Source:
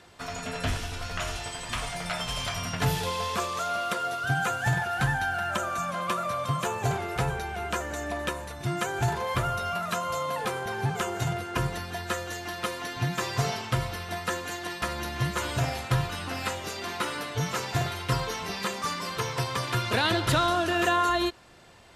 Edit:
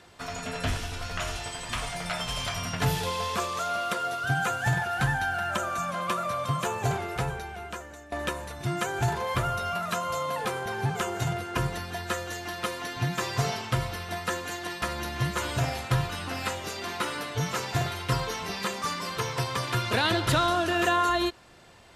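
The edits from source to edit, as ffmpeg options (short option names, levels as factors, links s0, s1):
-filter_complex "[0:a]asplit=2[s0][s1];[s0]atrim=end=8.12,asetpts=PTS-STARTPTS,afade=t=out:st=6.94:d=1.18:silence=0.141254[s2];[s1]atrim=start=8.12,asetpts=PTS-STARTPTS,afade=t=in:d=0.004:c=hsin:silence=0.141254[s3];[s2][s3]concat=n=2:v=0:a=1"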